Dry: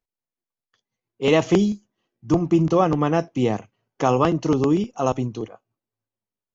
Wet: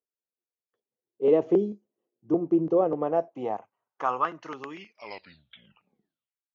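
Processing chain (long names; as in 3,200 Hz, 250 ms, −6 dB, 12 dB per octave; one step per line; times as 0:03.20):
turntable brake at the end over 1.84 s
band-pass filter sweep 430 Hz → 3,400 Hz, 0:02.69–0:05.46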